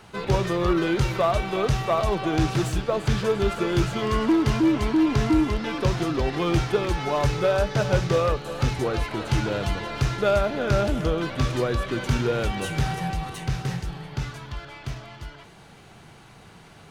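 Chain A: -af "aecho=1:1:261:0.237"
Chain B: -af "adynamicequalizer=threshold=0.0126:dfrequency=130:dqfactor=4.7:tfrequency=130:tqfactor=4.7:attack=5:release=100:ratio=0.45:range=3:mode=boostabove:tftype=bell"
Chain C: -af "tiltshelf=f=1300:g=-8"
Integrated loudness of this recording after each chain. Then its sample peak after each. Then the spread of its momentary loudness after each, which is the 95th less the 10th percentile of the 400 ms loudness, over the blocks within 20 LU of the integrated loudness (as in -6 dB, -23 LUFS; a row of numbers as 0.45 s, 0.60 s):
-24.0 LUFS, -23.5 LUFS, -27.5 LUFS; -9.5 dBFS, -7.5 dBFS, -10.0 dBFS; 11 LU, 10 LU, 12 LU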